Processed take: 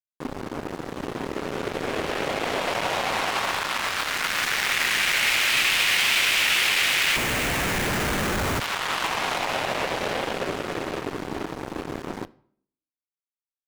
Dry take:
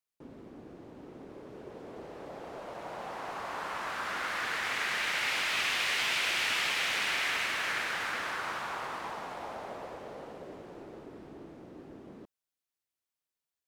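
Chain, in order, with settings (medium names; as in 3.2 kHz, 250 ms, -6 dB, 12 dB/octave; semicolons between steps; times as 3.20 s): in parallel at -8 dB: bit crusher 5-bit; on the sum: treble shelf 3.8 kHz +6 dB; compression 8:1, threshold -42 dBFS, peak gain reduction 19 dB; fuzz box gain 43 dB, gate -48 dBFS; dynamic bell 2.6 kHz, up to +6 dB, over -34 dBFS, Q 0.95; on a send at -16.5 dB: reverberation RT60 0.60 s, pre-delay 3 ms; 7.16–8.60 s: on the sum: Schmitt trigger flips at -25.5 dBFS; trim -5.5 dB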